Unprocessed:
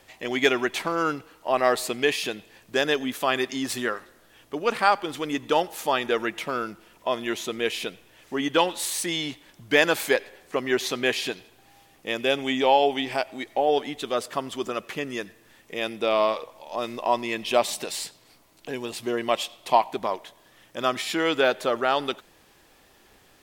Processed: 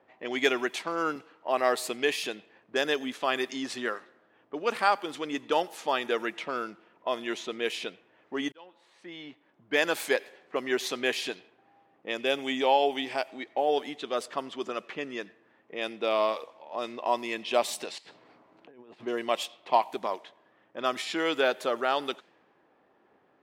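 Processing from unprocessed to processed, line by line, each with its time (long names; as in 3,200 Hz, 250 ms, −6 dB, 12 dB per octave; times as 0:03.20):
0:00.76–0:01.16: multiband upward and downward expander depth 40%
0:08.52–0:10.16: fade in
0:17.98–0:19.05: compressor whose output falls as the input rises −44 dBFS
whole clip: high-pass filter 210 Hz 12 dB per octave; low-pass that shuts in the quiet parts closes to 1,200 Hz, open at −22 dBFS; level −4 dB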